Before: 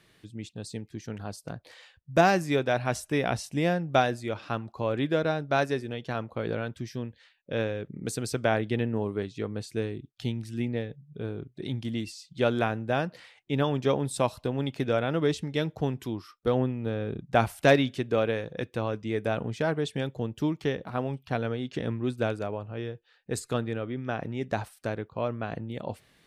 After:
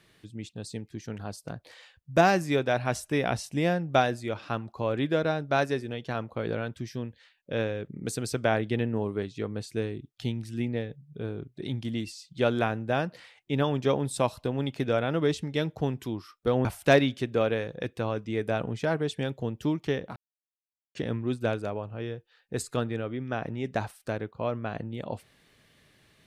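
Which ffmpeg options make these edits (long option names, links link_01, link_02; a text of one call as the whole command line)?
ffmpeg -i in.wav -filter_complex "[0:a]asplit=4[link_01][link_02][link_03][link_04];[link_01]atrim=end=16.652[link_05];[link_02]atrim=start=17.418:end=20.93,asetpts=PTS-STARTPTS,afade=type=out:start_time=3.508:duration=0.004:curve=hsin[link_06];[link_03]atrim=start=20.93:end=21.72,asetpts=PTS-STARTPTS,volume=0[link_07];[link_04]atrim=start=21.72,asetpts=PTS-STARTPTS,afade=type=in:duration=0.004:curve=hsin[link_08];[link_06][link_07][link_08]concat=n=3:v=0:a=1[link_09];[link_05][link_09]acrossfade=duration=0.004:curve1=hsin:curve2=hsin" out.wav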